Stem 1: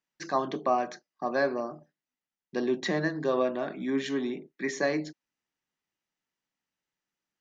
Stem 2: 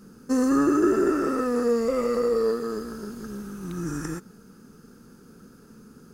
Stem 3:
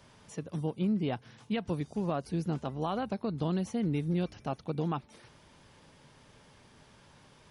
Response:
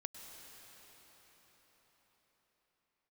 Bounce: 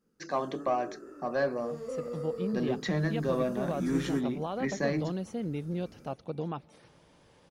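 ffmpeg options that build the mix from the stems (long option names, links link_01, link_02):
-filter_complex "[0:a]asubboost=boost=10:cutoff=150,asoftclip=type=tanh:threshold=-17.5dB,volume=-3.5dB[link_01];[1:a]flanger=delay=17:depth=7.8:speed=1.2,volume=-5.5dB,afade=type=in:start_time=1.49:duration=0.36:silence=0.375837,afade=type=in:start_time=2.89:duration=0.46:silence=0.334965[link_02];[2:a]adelay=1600,volume=-5dB,asplit=2[link_03][link_04];[link_04]volume=-20dB[link_05];[3:a]atrim=start_sample=2205[link_06];[link_05][link_06]afir=irnorm=-1:irlink=0[link_07];[link_01][link_02][link_03][link_07]amix=inputs=4:normalize=0,equalizer=frequency=530:width_type=o:width=0.69:gain=6"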